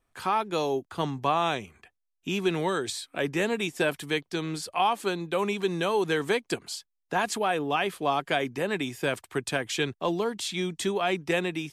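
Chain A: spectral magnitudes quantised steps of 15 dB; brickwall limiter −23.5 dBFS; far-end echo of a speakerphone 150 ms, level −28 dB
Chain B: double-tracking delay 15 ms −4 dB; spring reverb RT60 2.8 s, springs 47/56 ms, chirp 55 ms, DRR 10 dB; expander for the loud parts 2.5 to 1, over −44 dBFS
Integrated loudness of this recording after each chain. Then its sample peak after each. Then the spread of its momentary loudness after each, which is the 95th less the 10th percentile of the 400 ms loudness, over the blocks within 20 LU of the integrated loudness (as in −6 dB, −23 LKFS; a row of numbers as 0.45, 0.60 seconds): −33.5, −32.0 LKFS; −23.5, −10.5 dBFS; 5, 12 LU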